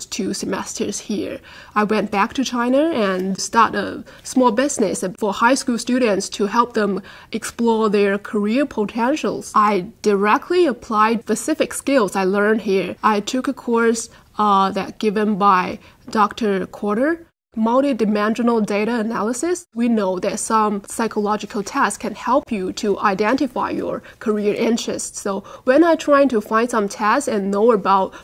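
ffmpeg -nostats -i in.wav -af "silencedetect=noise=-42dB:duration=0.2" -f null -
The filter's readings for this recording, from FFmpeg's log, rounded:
silence_start: 17.24
silence_end: 17.54 | silence_duration: 0.30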